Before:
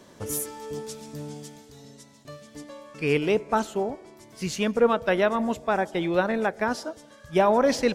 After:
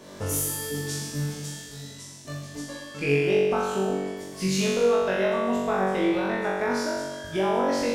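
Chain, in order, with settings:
downward compressor 10 to 1, threshold −30 dBFS, peak gain reduction 15.5 dB
on a send: flutter between parallel walls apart 3.6 metres, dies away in 1.3 s
on the sum: level +2.5 dB

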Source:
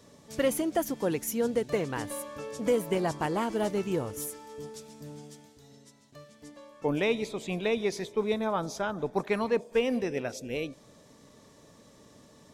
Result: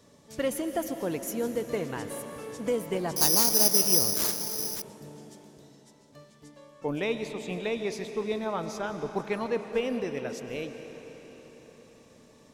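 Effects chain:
on a send at −8 dB: convolution reverb RT60 4.6 s, pre-delay 85 ms
0:03.16–0:04.82: on the sum: bad sample-rate conversion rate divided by 8×, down none, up zero stuff
level −2.5 dB

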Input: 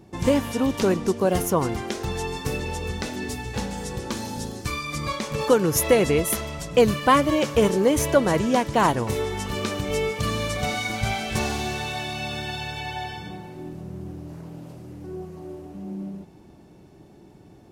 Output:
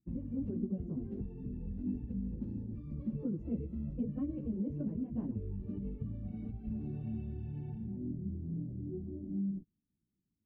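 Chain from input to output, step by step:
mains-hum notches 60/120/180/240/300/360/420/480/540 Hz
gate on every frequency bin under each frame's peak −30 dB strong
chorus effect 0.81 Hz, delay 15.5 ms, depth 5.5 ms
noise gate −46 dBFS, range −35 dB
guitar amp tone stack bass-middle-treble 10-0-1
downward compressor 12 to 1, threshold −53 dBFS, peak gain reduction 18 dB
low-pass that shuts in the quiet parts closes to 470 Hz, open at −30 dBFS
hollow resonant body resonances 230/2,700 Hz, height 13 dB, ringing for 40 ms
time stretch by phase vocoder 0.59×
level +17 dB

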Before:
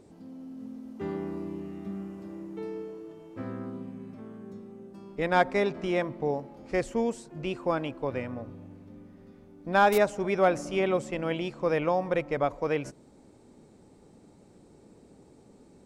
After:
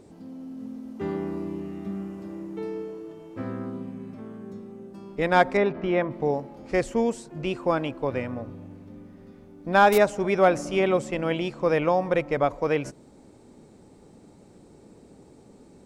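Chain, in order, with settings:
0:05.57–0:06.11: low-pass filter 2,600 Hz 12 dB per octave
level +4 dB

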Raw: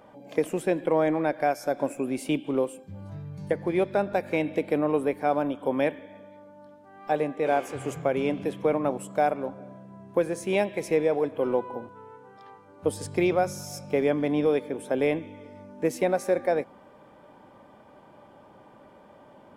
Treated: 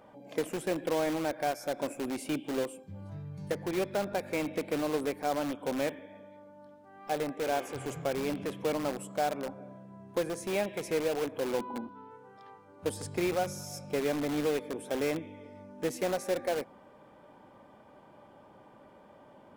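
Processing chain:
0:11.59–0:12.11: octave-band graphic EQ 125/250/500/1,000/2,000/4,000/8,000 Hz −9/+12/−8/+4/−4/+7/−12 dB
in parallel at −6 dB: wrap-around overflow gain 24 dB
on the sum: level −7 dB

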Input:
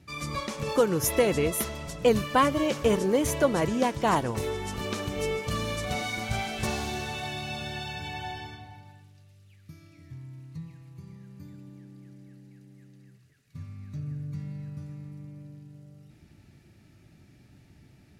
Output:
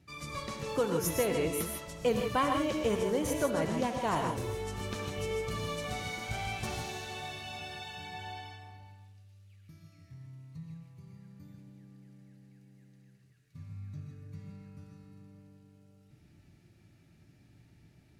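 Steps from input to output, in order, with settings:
reverb whose tail is shaped and stops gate 180 ms rising, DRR 3 dB
level −7.5 dB

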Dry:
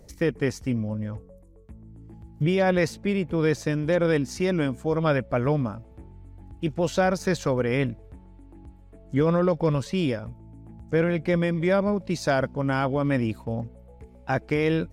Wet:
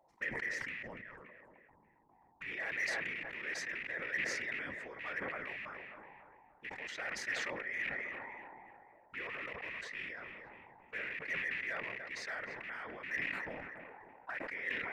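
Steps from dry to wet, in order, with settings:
loose part that buzzes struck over −27 dBFS, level −19 dBFS
dynamic equaliser 1,900 Hz, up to −4 dB, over −38 dBFS, Q 0.89
envelope filter 790–1,900 Hz, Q 12, up, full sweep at −26.5 dBFS
in parallel at −10 dB: wave folding −37 dBFS
on the sum: random phases in short frames
tape delay 290 ms, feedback 75%, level −16.5 dB, low-pass 1,900 Hz
level that may fall only so fast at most 23 dB per second
level +1.5 dB

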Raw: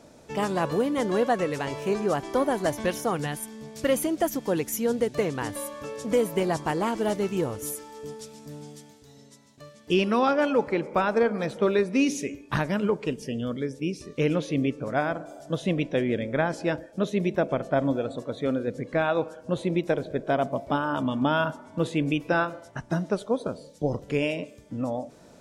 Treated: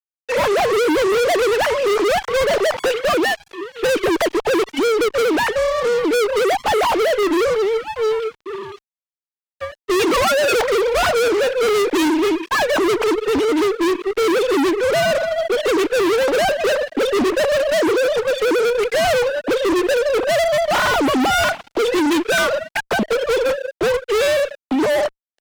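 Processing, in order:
three sine waves on the formant tracks
fuzz pedal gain 41 dB, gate −50 dBFS
level −2 dB

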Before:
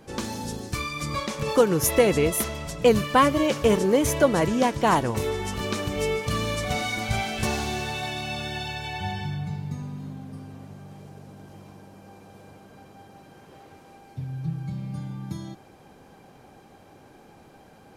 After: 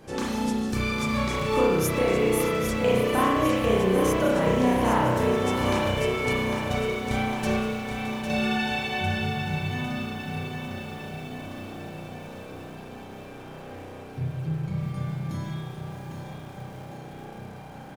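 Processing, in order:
0:06.33–0:08.30: noise gate −24 dBFS, range −15 dB
downward compressor 3 to 1, threshold −30 dBFS, peak gain reduction 13 dB
repeating echo 803 ms, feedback 60%, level −8 dB
spring reverb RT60 1.2 s, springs 32 ms, chirp 75 ms, DRR −6.5 dB
feedback echo at a low word length 617 ms, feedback 55%, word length 7 bits, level −13.5 dB

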